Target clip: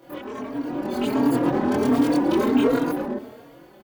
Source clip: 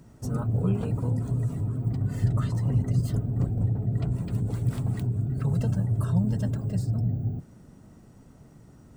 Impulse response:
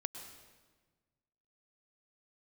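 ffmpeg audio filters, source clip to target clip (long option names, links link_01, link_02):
-filter_complex "[0:a]acompressor=threshold=-34dB:ratio=2.5,volume=31dB,asoftclip=hard,volume=-31dB,lowshelf=frequency=86:gain=-10.5,asetrate=103194,aresample=44100,dynaudnorm=framelen=110:gausssize=17:maxgain=14dB,asplit=2[link_01][link_02];[link_02]equalizer=frequency=140:width_type=o:width=0.26:gain=6.5[link_03];[1:a]atrim=start_sample=2205,afade=type=out:start_time=0.16:duration=0.01,atrim=end_sample=7497,adelay=24[link_04];[link_03][link_04]afir=irnorm=-1:irlink=0,volume=3.5dB[link_05];[link_01][link_05]amix=inputs=2:normalize=0,asplit=2[link_06][link_07];[link_07]adelay=3.7,afreqshift=1.4[link_08];[link_06][link_08]amix=inputs=2:normalize=1,volume=3.5dB"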